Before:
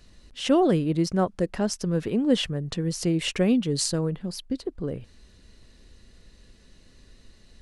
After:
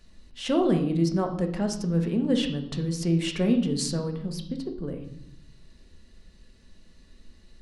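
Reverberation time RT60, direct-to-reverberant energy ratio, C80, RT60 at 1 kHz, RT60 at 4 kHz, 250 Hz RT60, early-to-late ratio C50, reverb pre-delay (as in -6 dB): 0.75 s, 3.5 dB, 12.0 dB, 0.70 s, 0.65 s, 1.3 s, 9.0 dB, 3 ms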